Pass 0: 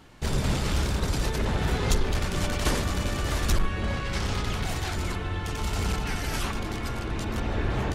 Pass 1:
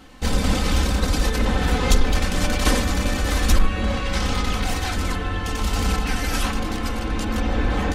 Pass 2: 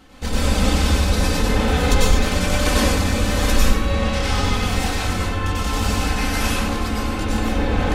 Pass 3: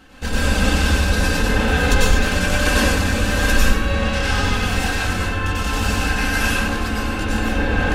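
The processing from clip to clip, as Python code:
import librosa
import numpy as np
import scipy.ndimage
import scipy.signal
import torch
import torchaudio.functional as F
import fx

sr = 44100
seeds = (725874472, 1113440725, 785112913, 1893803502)

y1 = x + 0.68 * np.pad(x, (int(3.9 * sr / 1000.0), 0))[:len(x)]
y1 = y1 * librosa.db_to_amplitude(4.5)
y2 = fx.rev_plate(y1, sr, seeds[0], rt60_s=0.71, hf_ratio=0.9, predelay_ms=85, drr_db=-5.0)
y2 = y2 * librosa.db_to_amplitude(-3.0)
y3 = fx.small_body(y2, sr, hz=(1600.0, 2700.0), ring_ms=45, db=15)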